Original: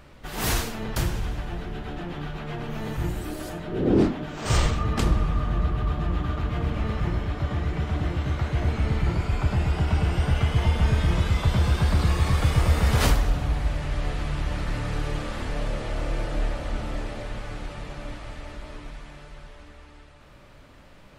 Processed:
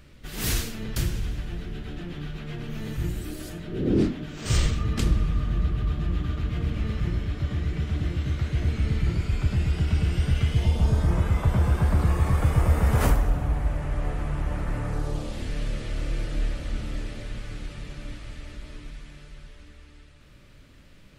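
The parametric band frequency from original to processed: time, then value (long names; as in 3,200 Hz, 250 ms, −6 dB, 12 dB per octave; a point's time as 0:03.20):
parametric band −12.5 dB 1.5 octaves
0:10.49 850 Hz
0:11.22 4,100 Hz
0:14.85 4,100 Hz
0:15.55 830 Hz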